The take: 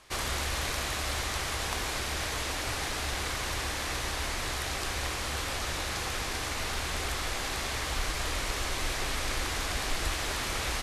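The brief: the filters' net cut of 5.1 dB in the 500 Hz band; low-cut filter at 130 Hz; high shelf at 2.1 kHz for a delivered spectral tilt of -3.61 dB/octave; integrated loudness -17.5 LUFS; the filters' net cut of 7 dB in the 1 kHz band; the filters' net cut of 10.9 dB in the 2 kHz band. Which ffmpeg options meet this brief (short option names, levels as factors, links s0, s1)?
-af "highpass=130,equalizer=f=500:t=o:g=-4.5,equalizer=f=1000:t=o:g=-3.5,equalizer=f=2000:t=o:g=-8.5,highshelf=f=2100:g=-7,volume=12.6"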